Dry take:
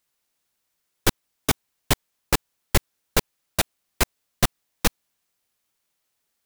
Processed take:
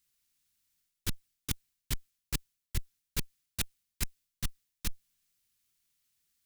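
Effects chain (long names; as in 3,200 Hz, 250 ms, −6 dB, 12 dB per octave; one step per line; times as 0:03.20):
guitar amp tone stack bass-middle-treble 6-0-2
reversed playback
downward compressor 5 to 1, threshold −45 dBFS, peak gain reduction 17 dB
reversed playback
level +14 dB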